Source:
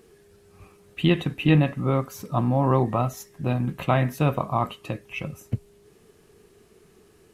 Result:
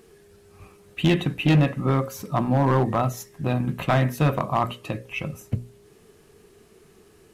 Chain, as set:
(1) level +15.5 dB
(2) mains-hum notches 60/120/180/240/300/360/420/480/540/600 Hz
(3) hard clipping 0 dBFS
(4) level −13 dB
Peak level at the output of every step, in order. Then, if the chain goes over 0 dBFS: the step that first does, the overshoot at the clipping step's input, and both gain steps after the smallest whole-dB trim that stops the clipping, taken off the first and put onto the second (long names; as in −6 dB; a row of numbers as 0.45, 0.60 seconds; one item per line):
+8.5, +8.5, 0.0, −13.0 dBFS
step 1, 8.5 dB
step 1 +6.5 dB, step 4 −4 dB